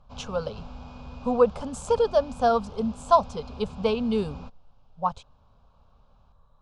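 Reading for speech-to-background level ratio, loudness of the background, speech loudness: 17.5 dB, -43.5 LUFS, -26.0 LUFS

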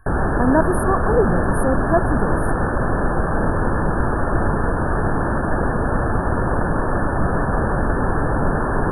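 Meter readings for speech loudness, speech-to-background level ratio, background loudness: -21.5 LUFS, -0.5 dB, -21.0 LUFS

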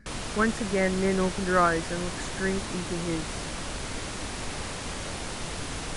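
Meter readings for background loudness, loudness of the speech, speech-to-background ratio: -34.5 LUFS, -28.0 LUFS, 6.5 dB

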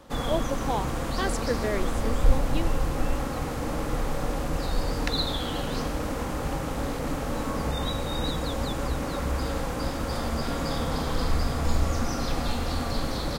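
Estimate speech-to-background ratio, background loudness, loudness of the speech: -3.5 dB, -29.5 LUFS, -33.0 LUFS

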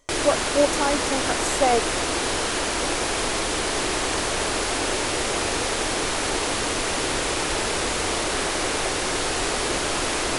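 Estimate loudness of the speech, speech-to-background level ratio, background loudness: -24.5 LUFS, -1.0 dB, -23.5 LUFS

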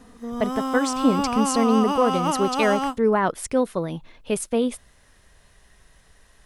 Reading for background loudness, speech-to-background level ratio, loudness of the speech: -25.5 LUFS, 2.0 dB, -23.5 LUFS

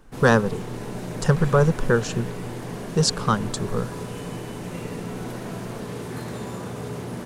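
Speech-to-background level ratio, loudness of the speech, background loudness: 11.0 dB, -22.5 LUFS, -33.5 LUFS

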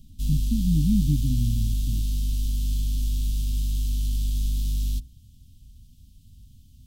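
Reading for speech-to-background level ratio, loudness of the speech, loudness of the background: 1.0 dB, -27.0 LUFS, -28.0 LUFS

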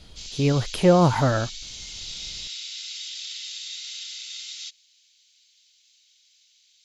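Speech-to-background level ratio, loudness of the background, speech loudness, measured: 13.0 dB, -34.0 LUFS, -21.0 LUFS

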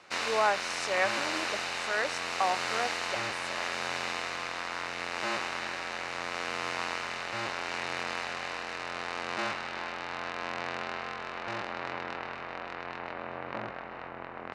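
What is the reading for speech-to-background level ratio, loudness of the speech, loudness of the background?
1.0 dB, -33.0 LUFS, -34.0 LUFS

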